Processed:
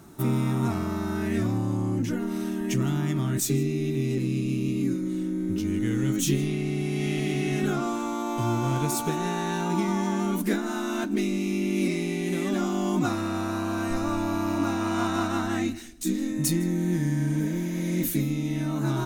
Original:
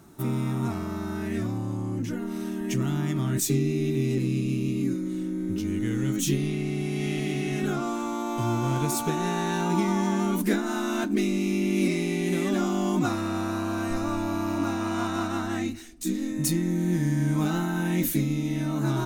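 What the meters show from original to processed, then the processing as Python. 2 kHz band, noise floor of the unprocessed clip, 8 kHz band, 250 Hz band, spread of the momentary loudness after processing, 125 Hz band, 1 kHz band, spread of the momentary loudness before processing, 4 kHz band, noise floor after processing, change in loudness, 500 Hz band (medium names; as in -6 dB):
0.0 dB, -32 dBFS, 0.0 dB, 0.0 dB, 4 LU, +0.5 dB, 0.0 dB, 6 LU, 0.0 dB, -30 dBFS, 0.0 dB, 0.0 dB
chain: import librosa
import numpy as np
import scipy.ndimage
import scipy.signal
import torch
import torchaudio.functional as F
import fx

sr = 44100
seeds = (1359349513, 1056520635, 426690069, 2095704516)

p1 = fx.spec_repair(x, sr, seeds[0], start_s=17.29, length_s=0.69, low_hz=520.0, high_hz=7400.0, source='both')
p2 = fx.rider(p1, sr, range_db=10, speed_s=2.0)
y = p2 + fx.echo_single(p2, sr, ms=157, db=-21.0, dry=0)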